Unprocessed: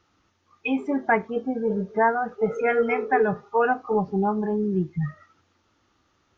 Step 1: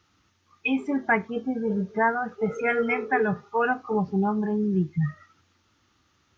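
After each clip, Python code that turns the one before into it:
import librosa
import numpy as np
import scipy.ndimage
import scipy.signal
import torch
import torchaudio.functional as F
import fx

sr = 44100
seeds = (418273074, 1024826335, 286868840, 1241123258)

y = scipy.signal.sosfilt(scipy.signal.butter(2, 55.0, 'highpass', fs=sr, output='sos'), x)
y = fx.peak_eq(y, sr, hz=580.0, db=-8.0, octaves=2.2)
y = F.gain(torch.from_numpy(y), 3.5).numpy()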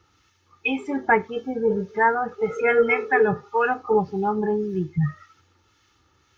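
y = fx.harmonic_tremolo(x, sr, hz=1.8, depth_pct=50, crossover_hz=1300.0)
y = y + 0.47 * np.pad(y, (int(2.3 * sr / 1000.0), 0))[:len(y)]
y = F.gain(torch.from_numpy(y), 5.0).numpy()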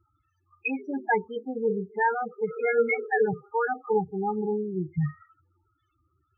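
y = fx.spec_topn(x, sr, count=8)
y = F.gain(torch.from_numpy(y), -4.5).numpy()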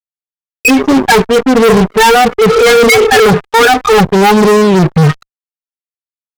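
y = fx.fuzz(x, sr, gain_db=38.0, gate_db=-47.0)
y = fx.cheby_harmonics(y, sr, harmonics=(7, 8), levels_db=(-27, -23), full_scale_db=-10.5)
y = F.gain(torch.from_numpy(y), 8.5).numpy()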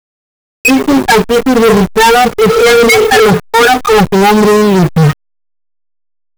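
y = fx.delta_hold(x, sr, step_db=-19.0)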